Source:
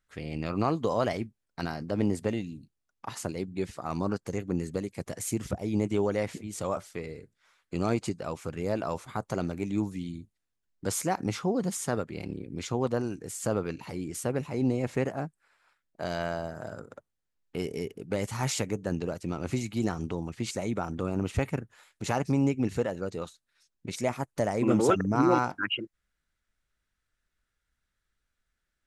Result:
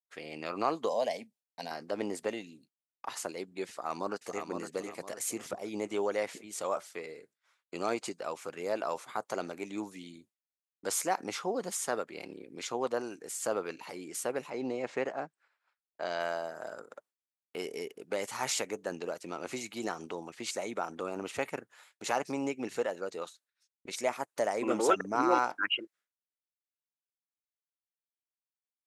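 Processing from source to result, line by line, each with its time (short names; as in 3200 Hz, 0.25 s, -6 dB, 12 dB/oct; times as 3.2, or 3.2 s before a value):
0.89–1.71 fixed phaser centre 350 Hz, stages 6
3.7–4.47 echo throw 0.51 s, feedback 35%, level -6 dB
14.5–16.2 Bessel low-pass 5300 Hz, order 4
whole clip: HPF 450 Hz 12 dB/oct; expander -59 dBFS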